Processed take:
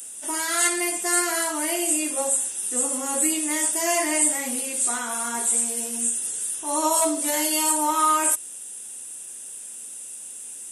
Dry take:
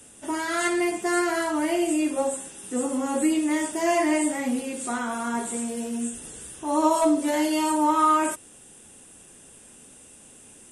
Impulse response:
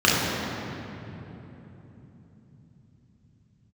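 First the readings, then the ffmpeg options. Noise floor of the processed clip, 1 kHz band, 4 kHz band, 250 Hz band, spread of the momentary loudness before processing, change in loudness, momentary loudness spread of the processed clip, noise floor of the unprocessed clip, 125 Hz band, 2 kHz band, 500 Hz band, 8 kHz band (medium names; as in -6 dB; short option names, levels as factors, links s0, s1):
-38 dBFS, -1.0 dB, +5.5 dB, -6.5 dB, 10 LU, +3.0 dB, 15 LU, -50 dBFS, no reading, +1.5 dB, -3.0 dB, +12.5 dB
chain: -af "aemphasis=mode=production:type=riaa,volume=0.891"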